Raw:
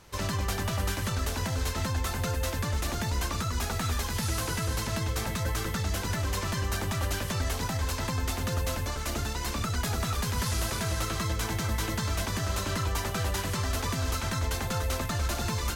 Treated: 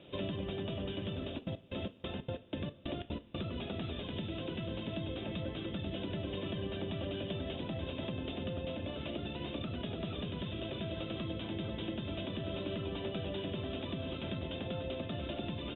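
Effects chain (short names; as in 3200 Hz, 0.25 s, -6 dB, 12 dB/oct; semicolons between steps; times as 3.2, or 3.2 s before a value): octaver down 2 oct, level -1 dB; bit-crush 9-bit; HPF 230 Hz 12 dB/oct; low shelf 340 Hz +7.5 dB; echo 1.074 s -19 dB; 1.23–3.45 step gate ".xx..xx.x." 184 bpm -60 dB; band shelf 1300 Hz -14 dB; compressor, threshold -37 dBFS, peak gain reduction 9.5 dB; Chebyshev low-pass 3700 Hz, order 10; notch 440 Hz, Q 12; two-slope reverb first 0.27 s, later 4.5 s, from -21 dB, DRR 9.5 dB; gain +3 dB; Opus 48 kbps 48000 Hz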